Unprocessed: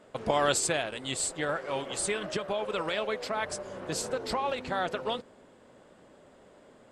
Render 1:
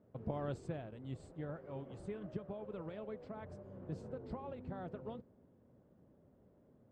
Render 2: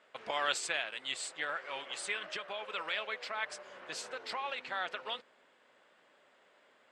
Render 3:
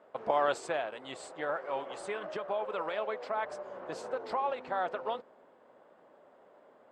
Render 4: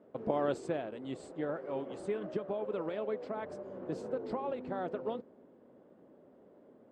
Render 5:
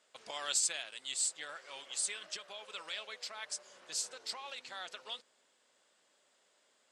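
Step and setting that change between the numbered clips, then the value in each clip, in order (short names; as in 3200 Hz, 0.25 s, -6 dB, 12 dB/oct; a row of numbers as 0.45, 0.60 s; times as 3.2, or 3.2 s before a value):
band-pass, frequency: 100, 2300, 830, 300, 5900 Hz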